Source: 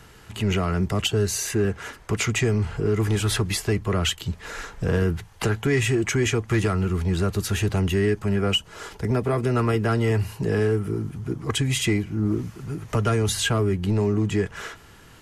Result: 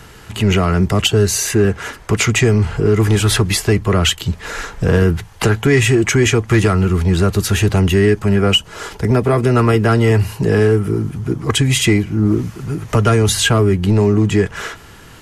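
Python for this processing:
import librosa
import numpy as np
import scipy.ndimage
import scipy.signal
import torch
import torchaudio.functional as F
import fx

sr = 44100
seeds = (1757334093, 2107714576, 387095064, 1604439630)

y = x * librosa.db_to_amplitude(9.0)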